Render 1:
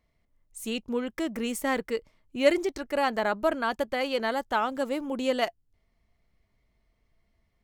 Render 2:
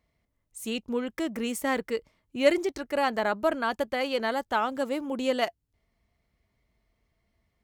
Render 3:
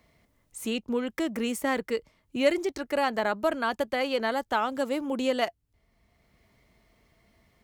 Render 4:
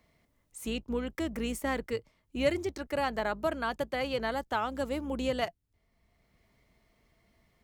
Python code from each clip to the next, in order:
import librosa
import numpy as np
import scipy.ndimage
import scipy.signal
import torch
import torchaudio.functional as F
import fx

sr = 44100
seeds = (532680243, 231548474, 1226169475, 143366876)

y1 = scipy.signal.sosfilt(scipy.signal.butter(2, 41.0, 'highpass', fs=sr, output='sos'), x)
y2 = fx.band_squash(y1, sr, depth_pct=40)
y3 = fx.octave_divider(y2, sr, octaves=2, level_db=-6.0)
y3 = y3 * 10.0 ** (-4.5 / 20.0)